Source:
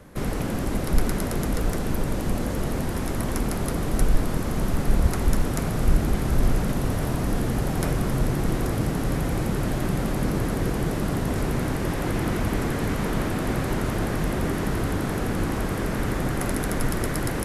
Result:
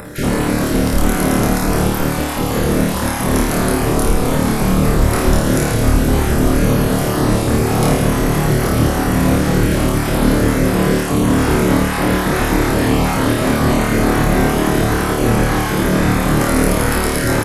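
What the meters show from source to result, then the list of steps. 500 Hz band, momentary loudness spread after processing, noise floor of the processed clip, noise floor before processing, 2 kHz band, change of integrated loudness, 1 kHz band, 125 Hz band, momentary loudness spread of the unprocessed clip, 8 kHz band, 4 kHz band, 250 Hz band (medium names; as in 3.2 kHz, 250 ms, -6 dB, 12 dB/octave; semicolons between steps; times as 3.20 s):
+12.0 dB, 2 LU, -19 dBFS, -27 dBFS, +12.5 dB, +10.5 dB, +12.5 dB, +9.0 dB, 3 LU, +12.0 dB, +12.5 dB, +11.5 dB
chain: random holes in the spectrogram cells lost 20%; bass shelf 89 Hz -7 dB; in parallel at +0.5 dB: peak limiter -20 dBFS, peak gain reduction 8 dB; on the sum: upward compressor, threshold -32 dBFS; doubling 16 ms -13 dB; on a send: flutter echo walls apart 4.6 m, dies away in 0.79 s; on the sum: trim +3.5 dB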